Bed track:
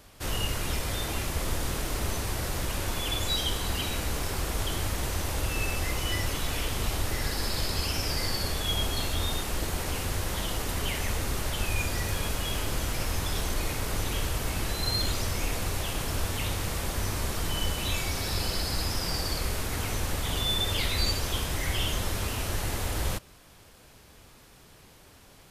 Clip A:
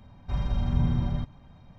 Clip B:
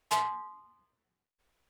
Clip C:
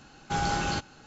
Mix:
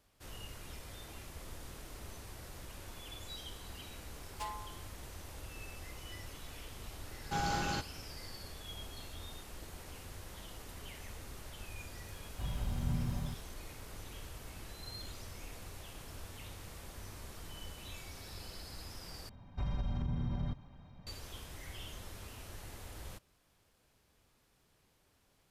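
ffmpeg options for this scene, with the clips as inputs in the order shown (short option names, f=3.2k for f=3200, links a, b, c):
-filter_complex "[1:a]asplit=2[a][b];[0:a]volume=-18dB[c];[a]aeval=exprs='val(0)*gte(abs(val(0)),0.00891)':c=same[d];[b]acompressor=threshold=-27dB:ratio=6:attack=3.2:release=140:knee=1:detection=peak[e];[c]asplit=2[f][g];[f]atrim=end=19.294[h];[e]atrim=end=1.78,asetpts=PTS-STARTPTS,volume=-4dB[i];[g]atrim=start=21.066[j];[2:a]atrim=end=1.69,asetpts=PTS-STARTPTS,volume=-13.5dB,afade=t=in:d=0.004:c=hsin,afade=t=out:st=1.686:d=0.004:c=hsin,adelay=189189S[k];[3:a]atrim=end=1.06,asetpts=PTS-STARTPTS,volume=-6.5dB,afade=t=in:d=0.004:c=hsin,afade=t=out:st=1.056:d=0.004:c=hsin,adelay=7010[l];[d]atrim=end=1.78,asetpts=PTS-STARTPTS,volume=-10dB,afade=t=in:d=0.004:c=hsin,afade=t=out:st=1.776:d=0.004:c=hsin,adelay=12100[m];[h][i]acrossfade=d=0.004:c1=hsin:c2=hsin[n];[n][j]acrossfade=d=0.004:c1=hsin:c2=hsin[o];[o][k][l][m]amix=inputs=4:normalize=0"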